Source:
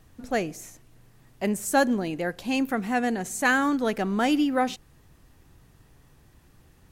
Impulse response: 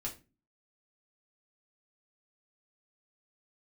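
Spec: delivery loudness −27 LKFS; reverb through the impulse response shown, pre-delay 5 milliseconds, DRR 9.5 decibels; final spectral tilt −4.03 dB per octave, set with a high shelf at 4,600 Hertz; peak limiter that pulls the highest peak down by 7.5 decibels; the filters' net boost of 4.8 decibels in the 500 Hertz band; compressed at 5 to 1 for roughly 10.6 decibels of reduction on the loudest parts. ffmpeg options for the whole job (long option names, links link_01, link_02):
-filter_complex "[0:a]equalizer=frequency=500:width_type=o:gain=5.5,highshelf=frequency=4600:gain=5,acompressor=threshold=-25dB:ratio=5,alimiter=limit=-23dB:level=0:latency=1,asplit=2[link_01][link_02];[1:a]atrim=start_sample=2205,adelay=5[link_03];[link_02][link_03]afir=irnorm=-1:irlink=0,volume=-9.5dB[link_04];[link_01][link_04]amix=inputs=2:normalize=0,volume=5dB"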